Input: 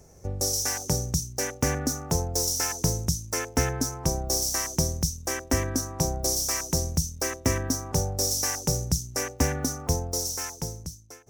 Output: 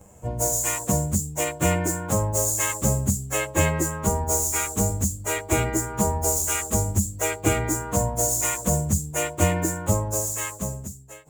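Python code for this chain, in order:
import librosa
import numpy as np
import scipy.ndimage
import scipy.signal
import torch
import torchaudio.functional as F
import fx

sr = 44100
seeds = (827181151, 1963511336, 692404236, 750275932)

y = fx.pitch_bins(x, sr, semitones=3.5)
y = F.gain(torch.from_numpy(y), 6.5).numpy()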